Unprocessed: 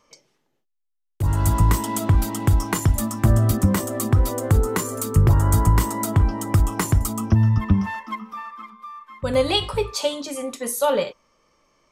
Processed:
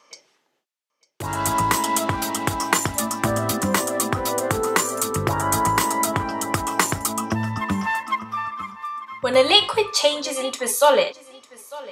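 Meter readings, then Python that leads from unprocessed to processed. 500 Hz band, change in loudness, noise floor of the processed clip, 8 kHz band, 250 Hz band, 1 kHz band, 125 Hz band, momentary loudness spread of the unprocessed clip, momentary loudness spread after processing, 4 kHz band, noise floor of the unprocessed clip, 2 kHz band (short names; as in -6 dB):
+3.5 dB, 0.0 dB, -72 dBFS, +5.5 dB, -2.5 dB, +6.5 dB, -11.5 dB, 13 LU, 11 LU, +7.5 dB, -73 dBFS, +7.5 dB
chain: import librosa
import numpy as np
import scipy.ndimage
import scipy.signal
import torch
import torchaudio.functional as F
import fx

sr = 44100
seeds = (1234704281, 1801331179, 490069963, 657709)

p1 = fx.weighting(x, sr, curve='A')
p2 = p1 + fx.echo_feedback(p1, sr, ms=900, feedback_pct=16, wet_db=-20.0, dry=0)
y = F.gain(torch.from_numpy(p2), 6.5).numpy()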